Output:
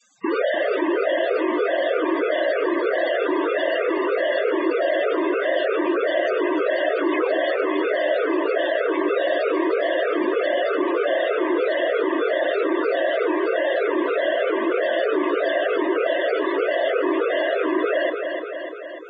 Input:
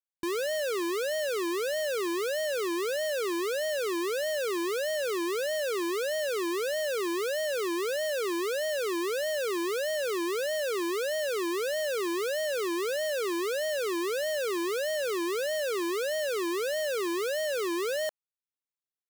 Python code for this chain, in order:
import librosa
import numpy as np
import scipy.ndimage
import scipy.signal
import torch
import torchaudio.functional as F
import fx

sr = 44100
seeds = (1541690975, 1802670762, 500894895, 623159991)

p1 = fx.dynamic_eq(x, sr, hz=3200.0, q=0.73, threshold_db=-45.0, ratio=4.0, max_db=4)
p2 = fx.spec_paint(p1, sr, seeds[0], shape='fall', start_s=7.11, length_s=0.27, low_hz=290.0, high_hz=3200.0, level_db=-39.0)
p3 = fx.noise_vocoder(p2, sr, seeds[1], bands=16)
p4 = fx.spec_topn(p3, sr, count=32)
p5 = p4 + fx.echo_feedback(p4, sr, ms=296, feedback_pct=40, wet_db=-11.0, dry=0)
p6 = fx.env_flatten(p5, sr, amount_pct=50)
y = p6 * 10.0 ** (6.5 / 20.0)